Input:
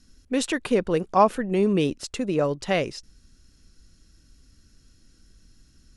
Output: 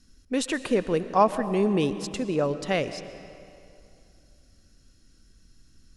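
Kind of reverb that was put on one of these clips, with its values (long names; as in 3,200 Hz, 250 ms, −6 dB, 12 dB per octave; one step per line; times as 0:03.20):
comb and all-pass reverb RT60 2.6 s, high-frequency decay 0.75×, pre-delay 80 ms, DRR 12 dB
level −2 dB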